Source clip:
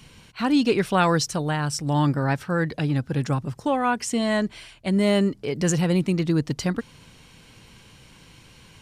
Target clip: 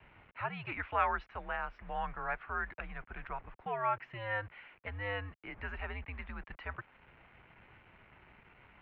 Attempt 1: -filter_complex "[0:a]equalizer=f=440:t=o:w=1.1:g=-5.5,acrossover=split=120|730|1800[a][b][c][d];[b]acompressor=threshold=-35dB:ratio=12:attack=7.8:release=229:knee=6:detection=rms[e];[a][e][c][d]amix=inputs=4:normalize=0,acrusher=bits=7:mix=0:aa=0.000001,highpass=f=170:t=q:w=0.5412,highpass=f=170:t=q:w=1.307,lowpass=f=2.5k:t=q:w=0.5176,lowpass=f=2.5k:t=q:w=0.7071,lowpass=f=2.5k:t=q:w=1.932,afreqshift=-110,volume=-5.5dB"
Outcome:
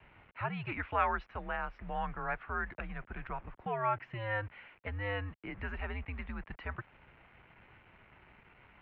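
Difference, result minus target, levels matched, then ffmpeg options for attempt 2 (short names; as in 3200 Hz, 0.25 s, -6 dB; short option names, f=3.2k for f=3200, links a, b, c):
compressor: peak gain reduction -9 dB
-filter_complex "[0:a]equalizer=f=440:t=o:w=1.1:g=-5.5,acrossover=split=120|730|1800[a][b][c][d];[b]acompressor=threshold=-45dB:ratio=12:attack=7.8:release=229:knee=6:detection=rms[e];[a][e][c][d]amix=inputs=4:normalize=0,acrusher=bits=7:mix=0:aa=0.000001,highpass=f=170:t=q:w=0.5412,highpass=f=170:t=q:w=1.307,lowpass=f=2.5k:t=q:w=0.5176,lowpass=f=2.5k:t=q:w=0.7071,lowpass=f=2.5k:t=q:w=1.932,afreqshift=-110,volume=-5.5dB"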